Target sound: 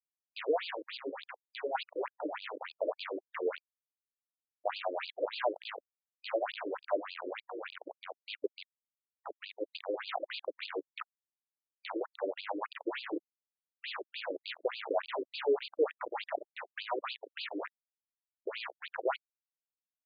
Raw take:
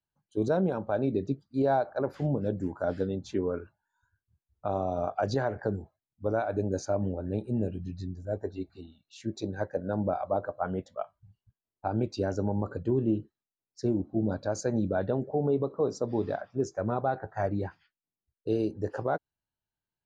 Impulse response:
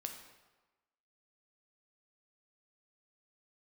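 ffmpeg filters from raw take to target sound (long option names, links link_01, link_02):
-filter_complex "[0:a]equalizer=frequency=1000:width_type=o:width=0.28:gain=9.5,asplit=8[link_01][link_02][link_03][link_04][link_05][link_06][link_07][link_08];[link_02]adelay=190,afreqshift=-43,volume=-16.5dB[link_09];[link_03]adelay=380,afreqshift=-86,volume=-20.4dB[link_10];[link_04]adelay=570,afreqshift=-129,volume=-24.3dB[link_11];[link_05]adelay=760,afreqshift=-172,volume=-28.1dB[link_12];[link_06]adelay=950,afreqshift=-215,volume=-32dB[link_13];[link_07]adelay=1140,afreqshift=-258,volume=-35.9dB[link_14];[link_08]adelay=1330,afreqshift=-301,volume=-39.8dB[link_15];[link_01][link_09][link_10][link_11][link_12][link_13][link_14][link_15]amix=inputs=8:normalize=0,acrusher=bits=4:mix=0:aa=0.000001,asettb=1/sr,asplit=3[link_16][link_17][link_18];[link_16]atrim=end=0.734[link_19];[link_17]atrim=start=0.73:end=1.75,asetpts=PTS-STARTPTS,afade=type=in:duration=0.004:curve=qsin,afade=type=out:start_time=1.016:duration=0.004:curve=qsin,acrossover=split=290|3000[link_20][link_21][link_22];[link_21]acompressor=threshold=-33dB:ratio=6[link_23];[link_20][link_23][link_22]amix=inputs=3:normalize=0[link_24];[link_18]atrim=start=1.746[link_25];[link_19][link_24]acrossfade=duration=0.004:curve1=hsin:curve2=qsin[link_26];[link_26][link_25]acrossfade=duration=0.004:curve1=qsin:curve2=hsin,afftfilt=real='re*between(b*sr/1024,390*pow(3500/390,0.5+0.5*sin(2*PI*3.4*pts/sr))/1.41,390*pow(3500/390,0.5+0.5*sin(2*PI*3.4*pts/sr))*1.41)':imag='im*between(b*sr/1024,390*pow(3500/390,0.5+0.5*sin(2*PI*3.4*pts/sr))/1.41,390*pow(3500/390,0.5+0.5*sin(2*PI*3.4*pts/sr))*1.41)':win_size=1024:overlap=0.75"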